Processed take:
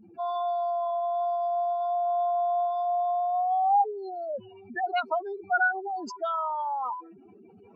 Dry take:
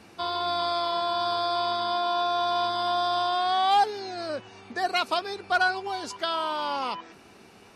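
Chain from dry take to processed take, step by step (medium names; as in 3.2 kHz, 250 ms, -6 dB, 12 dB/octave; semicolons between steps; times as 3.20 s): spectral contrast enhancement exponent 4; endings held to a fixed fall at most 350 dB/s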